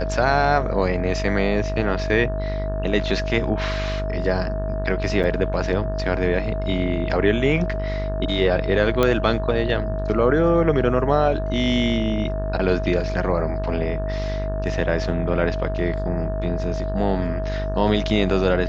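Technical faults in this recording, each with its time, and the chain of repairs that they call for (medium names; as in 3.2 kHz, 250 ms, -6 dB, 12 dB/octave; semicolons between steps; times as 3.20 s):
buzz 50 Hz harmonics 36 -26 dBFS
whine 640 Hz -28 dBFS
5.23–5.24 s: dropout 8.1 ms
9.03 s: pop -6 dBFS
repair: de-click; band-stop 640 Hz, Q 30; de-hum 50 Hz, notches 36; interpolate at 5.23 s, 8.1 ms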